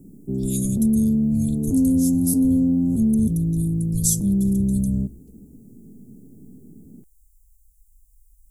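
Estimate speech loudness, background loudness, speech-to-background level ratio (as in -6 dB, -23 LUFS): -30.0 LUFS, -21.0 LUFS, -9.0 dB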